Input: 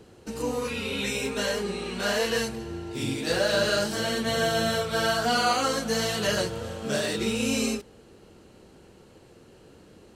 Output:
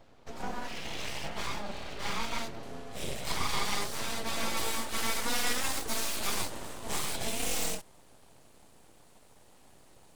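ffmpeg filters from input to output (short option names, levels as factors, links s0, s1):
-af "asetnsamples=n=441:p=0,asendcmd='2.63 equalizer g 4;4.57 equalizer g 11.5',equalizer=f=10000:w=0.98:g=-13,aeval=exprs='abs(val(0))':c=same,volume=0.596"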